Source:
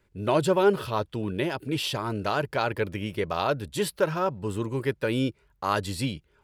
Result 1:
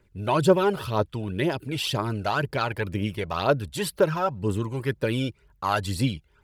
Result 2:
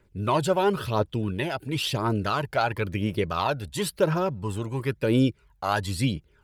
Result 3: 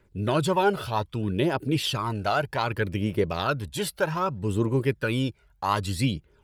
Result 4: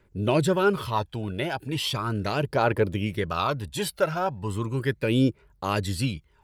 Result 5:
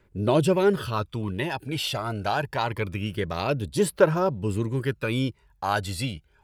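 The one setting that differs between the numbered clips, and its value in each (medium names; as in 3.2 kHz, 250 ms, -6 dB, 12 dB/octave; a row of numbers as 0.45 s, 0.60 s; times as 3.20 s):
phaser, rate: 2 Hz, 0.97 Hz, 0.64 Hz, 0.37 Hz, 0.25 Hz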